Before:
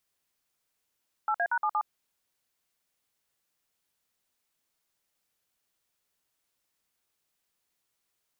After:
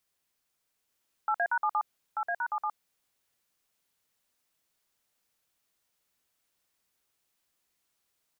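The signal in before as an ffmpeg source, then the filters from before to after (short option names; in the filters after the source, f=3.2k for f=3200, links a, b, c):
-f lavfi -i "aevalsrc='0.0447*clip(min(mod(t,0.117),0.064-mod(t,0.117))/0.002,0,1)*(eq(floor(t/0.117),0)*(sin(2*PI*852*mod(t,0.117))+sin(2*PI*1336*mod(t,0.117)))+eq(floor(t/0.117),1)*(sin(2*PI*697*mod(t,0.117))+sin(2*PI*1633*mod(t,0.117)))+eq(floor(t/0.117),2)*(sin(2*PI*941*mod(t,0.117))+sin(2*PI*1477*mod(t,0.117)))+eq(floor(t/0.117),3)*(sin(2*PI*852*mod(t,0.117))+sin(2*PI*1209*mod(t,0.117)))+eq(floor(t/0.117),4)*(sin(2*PI*852*mod(t,0.117))+sin(2*PI*1209*mod(t,0.117))))':d=0.585:s=44100"
-af "aecho=1:1:887:0.668"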